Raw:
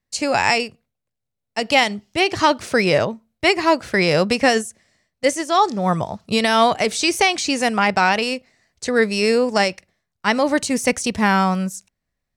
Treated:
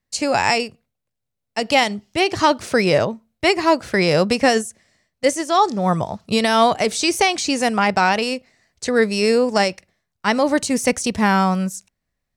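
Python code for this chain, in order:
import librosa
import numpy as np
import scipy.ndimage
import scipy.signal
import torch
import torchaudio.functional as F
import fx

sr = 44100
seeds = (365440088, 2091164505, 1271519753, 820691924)

y = fx.dynamic_eq(x, sr, hz=2300.0, q=0.83, threshold_db=-29.0, ratio=4.0, max_db=-3)
y = F.gain(torch.from_numpy(y), 1.0).numpy()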